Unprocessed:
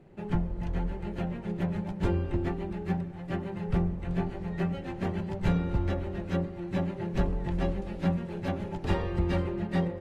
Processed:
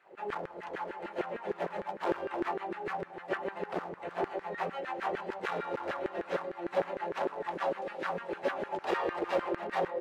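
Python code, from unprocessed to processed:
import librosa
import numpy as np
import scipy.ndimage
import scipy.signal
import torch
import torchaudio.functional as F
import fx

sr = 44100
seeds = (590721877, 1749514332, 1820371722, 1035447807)

y = fx.high_shelf(x, sr, hz=4500.0, db=-8.0)
y = np.clip(y, -10.0 ** (-27.0 / 20.0), 10.0 ** (-27.0 / 20.0))
y = fx.filter_lfo_highpass(y, sr, shape='saw_down', hz=6.6, low_hz=390.0, high_hz=1700.0, q=2.9)
y = y * 10.0 ** (2.0 / 20.0)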